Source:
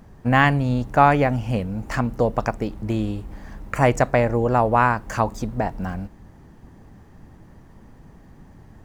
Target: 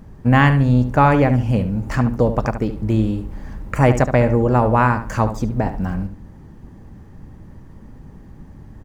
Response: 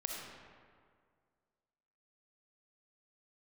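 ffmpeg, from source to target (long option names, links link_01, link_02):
-filter_complex "[0:a]lowshelf=frequency=400:gain=7,bandreject=frequency=700:width=12,asplit=2[link_01][link_02];[link_02]adelay=72,lowpass=frequency=3600:poles=1,volume=-10dB,asplit=2[link_03][link_04];[link_04]adelay=72,lowpass=frequency=3600:poles=1,volume=0.27,asplit=2[link_05][link_06];[link_06]adelay=72,lowpass=frequency=3600:poles=1,volume=0.27[link_07];[link_03][link_05][link_07]amix=inputs=3:normalize=0[link_08];[link_01][link_08]amix=inputs=2:normalize=0"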